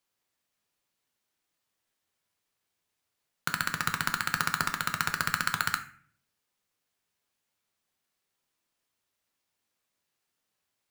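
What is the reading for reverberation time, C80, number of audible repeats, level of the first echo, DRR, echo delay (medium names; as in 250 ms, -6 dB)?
0.50 s, 16.0 dB, no echo, no echo, 6.5 dB, no echo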